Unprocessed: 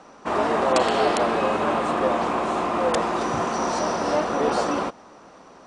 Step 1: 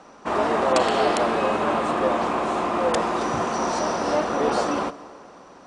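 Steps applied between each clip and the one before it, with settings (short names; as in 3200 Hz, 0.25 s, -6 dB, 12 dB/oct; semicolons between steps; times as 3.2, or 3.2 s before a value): plate-style reverb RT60 2.5 s, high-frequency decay 0.75×, DRR 16 dB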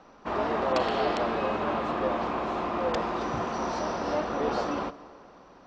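LPF 5400 Hz 24 dB/oct; low shelf 78 Hz +11.5 dB; gain -6.5 dB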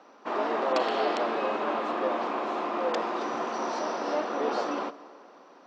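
HPF 250 Hz 24 dB/oct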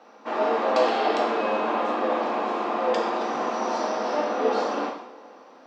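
non-linear reverb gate 0.23 s falling, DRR -1.5 dB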